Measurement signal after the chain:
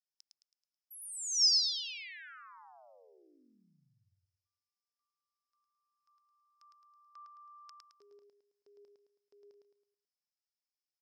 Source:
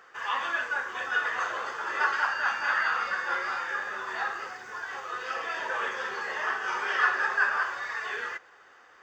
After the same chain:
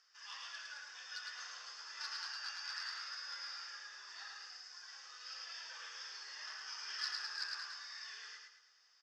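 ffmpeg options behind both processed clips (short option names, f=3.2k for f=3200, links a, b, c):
-af "asoftclip=type=hard:threshold=-20.5dB,bandpass=f=5.2k:t=q:w=9.6:csg=0,aecho=1:1:108|216|324|432|540:0.708|0.29|0.119|0.0488|0.02,volume=7dB"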